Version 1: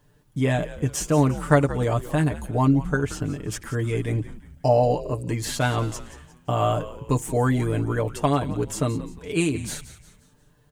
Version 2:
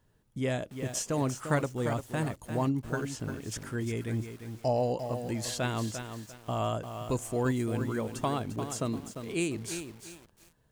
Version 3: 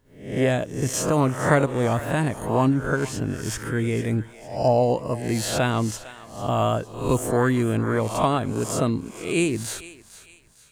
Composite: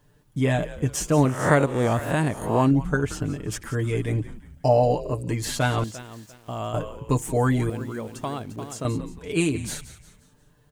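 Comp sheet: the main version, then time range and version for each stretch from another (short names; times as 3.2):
1
1.25–2.71 from 3
5.84–6.74 from 2
7.7–8.85 from 2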